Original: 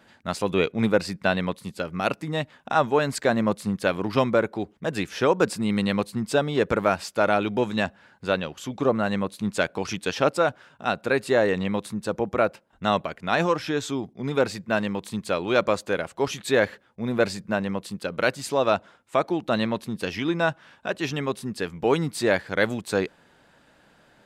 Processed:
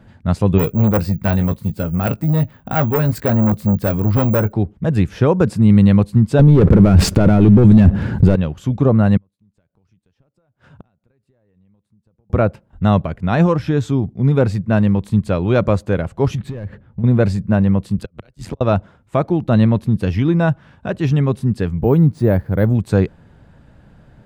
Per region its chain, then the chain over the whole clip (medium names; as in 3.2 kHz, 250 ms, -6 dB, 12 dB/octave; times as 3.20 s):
0.58–4.53 s: doubling 19 ms -11 dB + careless resampling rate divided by 2×, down filtered, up zero stuff + transformer saturation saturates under 3.5 kHz
6.39–8.36 s: resonant low shelf 510 Hz +7 dB, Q 1.5 + waveshaping leveller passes 3 + level flattener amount 50%
9.17–12.30 s: compression 10:1, threshold -28 dBFS + inverted gate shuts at -34 dBFS, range -37 dB
16.35–17.04 s: tone controls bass +7 dB, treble -10 dB + compression 8:1, threshold -34 dBFS + hard clipper -34 dBFS
17.98–18.61 s: inverted gate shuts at -17 dBFS, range -36 dB + AM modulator 88 Hz, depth 75% + three bands compressed up and down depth 100%
21.78–22.75 s: peaking EQ 3.2 kHz -10.5 dB 2.5 oct + careless resampling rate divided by 3×, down filtered, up hold
whole clip: FFT filter 100 Hz 0 dB, 310 Hz -16 dB, 4.5 kHz -28 dB; loudness maximiser +24.5 dB; trim -1 dB